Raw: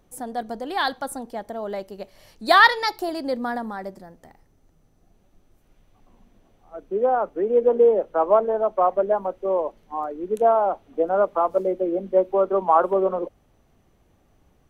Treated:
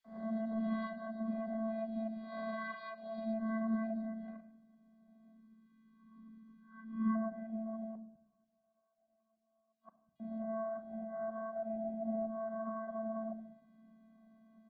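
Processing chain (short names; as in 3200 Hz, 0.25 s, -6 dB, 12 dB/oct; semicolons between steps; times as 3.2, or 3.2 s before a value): spectral swells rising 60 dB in 0.46 s; notches 50/100/150/200/250/300/350/400/450 Hz; 5.32–7.11 spectral delete 330–930 Hz; dynamic EQ 210 Hz, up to +3 dB, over -39 dBFS, Q 2.8; compressor 5:1, threshold -31 dBFS, peak gain reduction 20.5 dB; limiter -28.5 dBFS, peak gain reduction 10 dB; vocoder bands 16, square 222 Hz; rippled Chebyshev low-pass 4600 Hz, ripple 3 dB; 7.91–10.16 flipped gate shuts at -45 dBFS, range -40 dB; three bands offset in time highs, mids, lows 40/240 ms, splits 160/3000 Hz; shoebox room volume 2500 m³, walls furnished, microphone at 1 m; gain +1 dB; Opus 16 kbps 48000 Hz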